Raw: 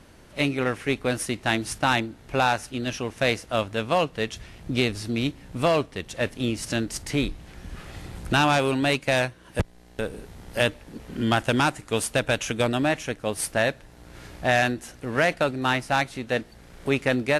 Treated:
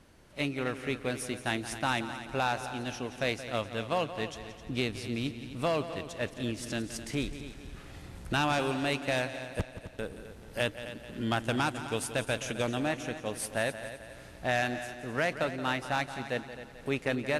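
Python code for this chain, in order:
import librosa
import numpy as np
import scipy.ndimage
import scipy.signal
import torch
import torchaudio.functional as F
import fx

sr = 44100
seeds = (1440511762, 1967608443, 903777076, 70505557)

y = fx.echo_heads(x, sr, ms=87, heads='second and third', feedback_pct=48, wet_db=-13.0)
y = F.gain(torch.from_numpy(y), -8.0).numpy()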